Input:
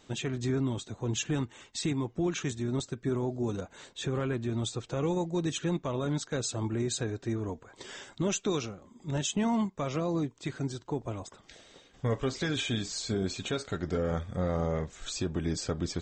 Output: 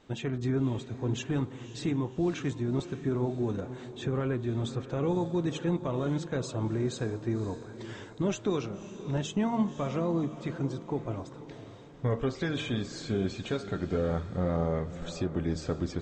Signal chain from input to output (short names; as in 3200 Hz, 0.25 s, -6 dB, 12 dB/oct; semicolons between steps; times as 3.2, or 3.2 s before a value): LPF 1800 Hz 6 dB/oct; de-hum 77.15 Hz, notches 19; on a send: diffused feedback echo 0.545 s, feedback 46%, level -13 dB; on the sum: gain +1.5 dB